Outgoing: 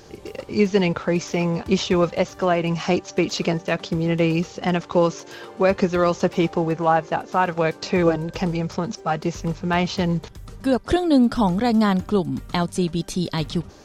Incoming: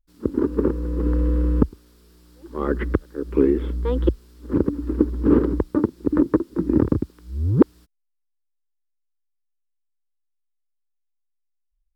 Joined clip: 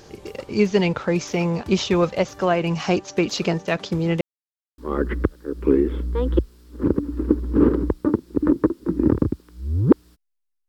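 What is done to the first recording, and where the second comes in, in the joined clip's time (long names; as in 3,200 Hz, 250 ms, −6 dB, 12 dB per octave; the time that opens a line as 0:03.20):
outgoing
0:04.21–0:04.78: silence
0:04.78: continue with incoming from 0:02.48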